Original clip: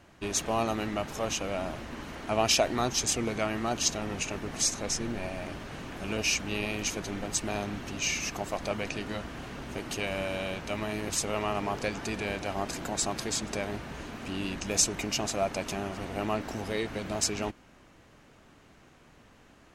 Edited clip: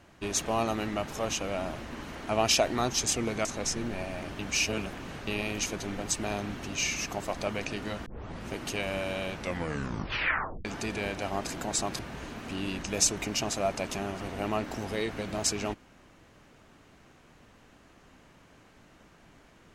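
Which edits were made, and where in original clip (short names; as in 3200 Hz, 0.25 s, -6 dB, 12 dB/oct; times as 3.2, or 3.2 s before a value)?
3.45–4.69 cut
5.63–6.51 reverse
9.3 tape start 0.43 s
10.58 tape stop 1.31 s
13.23–13.76 cut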